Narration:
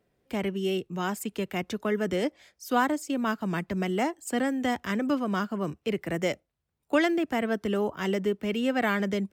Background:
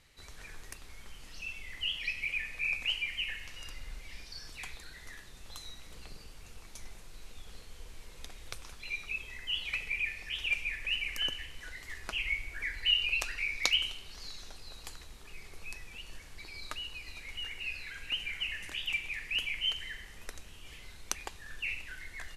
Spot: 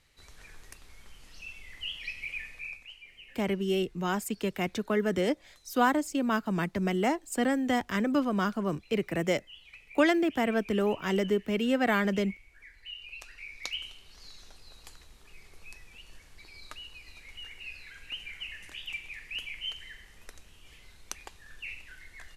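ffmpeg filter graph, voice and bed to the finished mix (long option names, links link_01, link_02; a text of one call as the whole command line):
ffmpeg -i stem1.wav -i stem2.wav -filter_complex "[0:a]adelay=3050,volume=0dB[link_01];[1:a]volume=8.5dB,afade=type=out:start_time=2.45:duration=0.41:silence=0.223872,afade=type=in:start_time=12.95:duration=1.46:silence=0.266073[link_02];[link_01][link_02]amix=inputs=2:normalize=0" out.wav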